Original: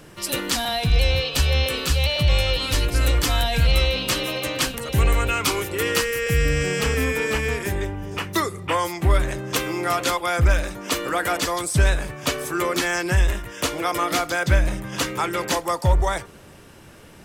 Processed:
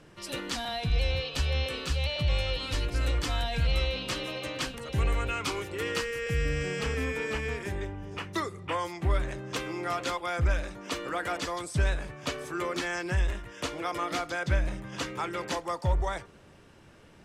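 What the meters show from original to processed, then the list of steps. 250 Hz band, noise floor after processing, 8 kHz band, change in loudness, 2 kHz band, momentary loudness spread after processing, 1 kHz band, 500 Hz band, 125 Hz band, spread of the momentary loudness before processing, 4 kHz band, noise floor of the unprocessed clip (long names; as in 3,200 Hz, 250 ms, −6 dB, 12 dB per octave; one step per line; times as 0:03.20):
−8.5 dB, −54 dBFS, −13.5 dB, −9.0 dB, −9.0 dB, 6 LU, −9.0 dB, −8.5 dB, −8.5 dB, 6 LU, −10.0 dB, −45 dBFS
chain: high-frequency loss of the air 56 metres
level −8.5 dB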